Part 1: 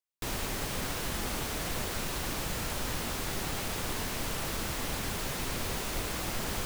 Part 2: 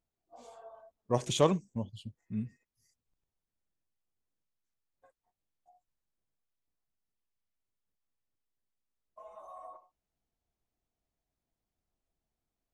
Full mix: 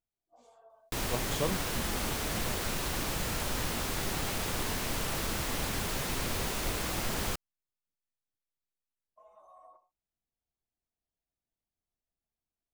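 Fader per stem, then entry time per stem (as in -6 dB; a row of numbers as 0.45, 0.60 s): +1.0, -8.0 dB; 0.70, 0.00 s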